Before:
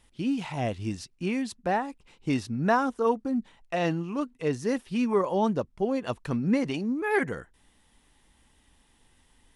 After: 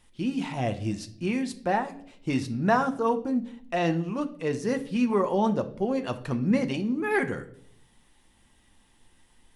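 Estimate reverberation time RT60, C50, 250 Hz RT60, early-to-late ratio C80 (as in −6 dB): 0.65 s, 15.0 dB, 0.80 s, 18.5 dB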